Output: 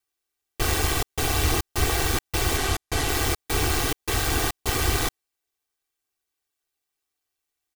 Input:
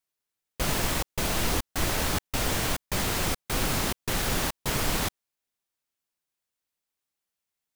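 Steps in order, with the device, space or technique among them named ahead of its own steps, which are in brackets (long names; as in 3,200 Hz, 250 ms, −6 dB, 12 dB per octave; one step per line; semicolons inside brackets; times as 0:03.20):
0:02.57–0:03.09: Bessel low-pass filter 12,000 Hz, order 2
ring-modulated robot voice (ring modulation 75 Hz; comb filter 2.6 ms, depth 80%)
level +4 dB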